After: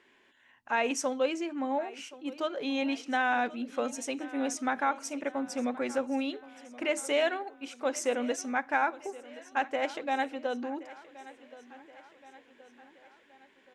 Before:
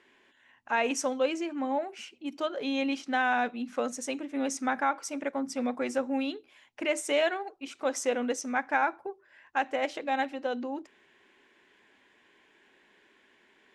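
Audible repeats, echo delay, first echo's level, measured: 3, 1,074 ms, −18.5 dB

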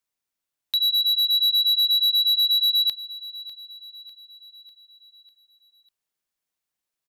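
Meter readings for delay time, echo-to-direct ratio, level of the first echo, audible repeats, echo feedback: 598 ms, −15.0 dB, −16.5 dB, 4, 52%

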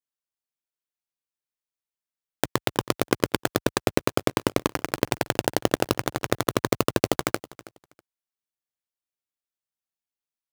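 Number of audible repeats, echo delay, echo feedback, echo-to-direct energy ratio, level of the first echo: 2, 323 ms, 20%, −19.5 dB, −19.5 dB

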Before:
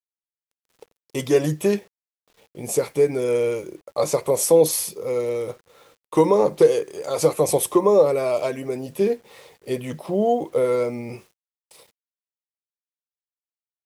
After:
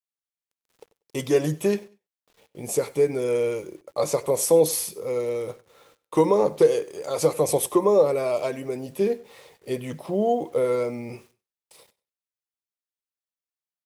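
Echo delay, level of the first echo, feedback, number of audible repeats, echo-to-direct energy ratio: 96 ms, −21.5 dB, 24%, 2, −21.5 dB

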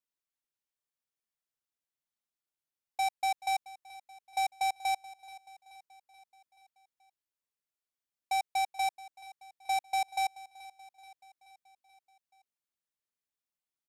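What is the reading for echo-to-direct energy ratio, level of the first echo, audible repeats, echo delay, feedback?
−16.5 dB, −18.5 dB, 4, 430 ms, 58%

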